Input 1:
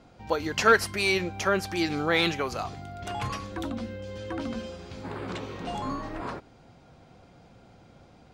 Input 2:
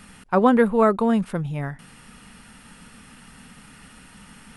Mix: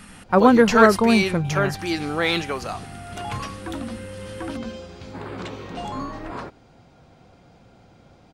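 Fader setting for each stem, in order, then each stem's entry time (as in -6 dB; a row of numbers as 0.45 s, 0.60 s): +2.0 dB, +2.5 dB; 0.10 s, 0.00 s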